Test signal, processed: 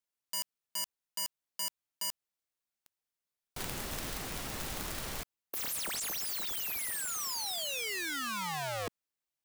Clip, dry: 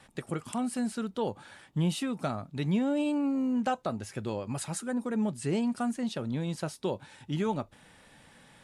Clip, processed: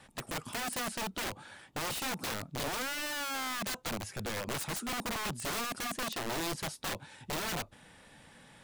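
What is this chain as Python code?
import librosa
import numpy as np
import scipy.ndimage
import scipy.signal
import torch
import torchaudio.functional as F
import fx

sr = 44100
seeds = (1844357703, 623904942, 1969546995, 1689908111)

y = (np.mod(10.0 ** (30.5 / 20.0) * x + 1.0, 2.0) - 1.0) / 10.0 ** (30.5 / 20.0)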